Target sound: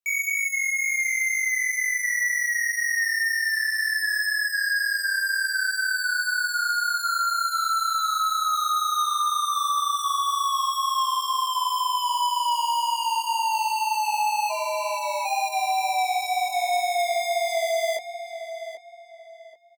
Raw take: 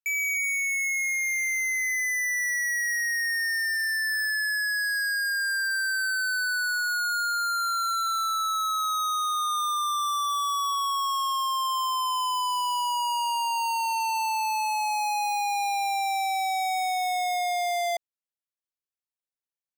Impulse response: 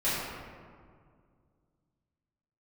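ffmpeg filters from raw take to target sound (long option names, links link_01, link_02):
-filter_complex "[0:a]asplit=3[link_01][link_02][link_03];[link_01]afade=type=out:start_time=14.49:duration=0.02[link_04];[link_02]aeval=exprs='val(0)*sin(2*PI*190*n/s)':channel_layout=same,afade=type=in:start_time=14.49:duration=0.02,afade=type=out:start_time=15.24:duration=0.02[link_05];[link_03]afade=type=in:start_time=15.24:duration=0.02[link_06];[link_04][link_05][link_06]amix=inputs=3:normalize=0,flanger=delay=19:depth=3.7:speed=2,afreqshift=-40,asplit=2[link_07][link_08];[link_08]adelay=784,lowpass=frequency=3700:poles=1,volume=-10dB,asplit=2[link_09][link_10];[link_10]adelay=784,lowpass=frequency=3700:poles=1,volume=0.31,asplit=2[link_11][link_12];[link_12]adelay=784,lowpass=frequency=3700:poles=1,volume=0.31[link_13];[link_09][link_11][link_13]amix=inputs=3:normalize=0[link_14];[link_07][link_14]amix=inputs=2:normalize=0,volume=5dB"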